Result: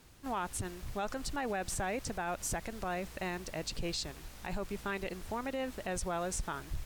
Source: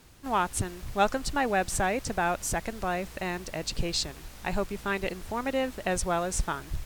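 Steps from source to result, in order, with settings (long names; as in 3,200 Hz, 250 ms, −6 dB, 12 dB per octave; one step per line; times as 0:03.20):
brickwall limiter −23 dBFS, peak gain reduction 11.5 dB
level −4 dB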